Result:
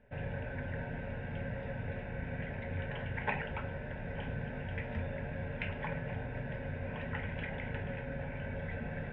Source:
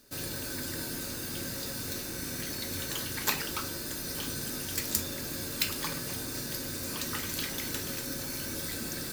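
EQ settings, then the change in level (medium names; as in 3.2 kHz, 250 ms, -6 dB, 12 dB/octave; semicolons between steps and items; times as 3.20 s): Gaussian low-pass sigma 3.2 samples; distance through air 300 m; static phaser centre 1.2 kHz, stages 6; +6.0 dB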